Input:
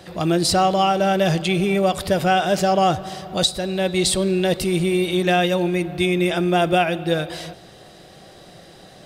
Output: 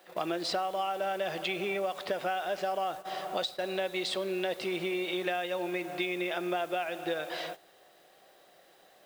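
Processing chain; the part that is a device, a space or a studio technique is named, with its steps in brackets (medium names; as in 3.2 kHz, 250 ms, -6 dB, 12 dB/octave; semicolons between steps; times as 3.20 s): baby monitor (band-pass 490–3200 Hz; compression 10:1, threshold -29 dBFS, peak gain reduction 14.5 dB; white noise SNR 23 dB; gate -40 dBFS, range -12 dB)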